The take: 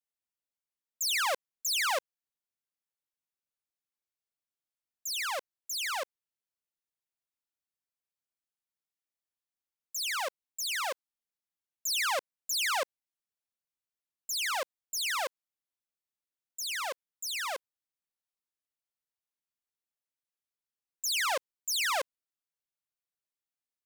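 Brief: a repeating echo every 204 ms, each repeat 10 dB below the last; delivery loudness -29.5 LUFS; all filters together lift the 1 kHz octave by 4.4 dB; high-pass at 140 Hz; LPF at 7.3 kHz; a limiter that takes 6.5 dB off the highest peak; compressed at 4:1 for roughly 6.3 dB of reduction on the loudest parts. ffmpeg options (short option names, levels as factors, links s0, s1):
-af "highpass=140,lowpass=7300,equalizer=f=1000:t=o:g=5.5,acompressor=threshold=0.0282:ratio=4,alimiter=level_in=2.66:limit=0.0631:level=0:latency=1,volume=0.376,aecho=1:1:204|408|612|816:0.316|0.101|0.0324|0.0104,volume=2.37"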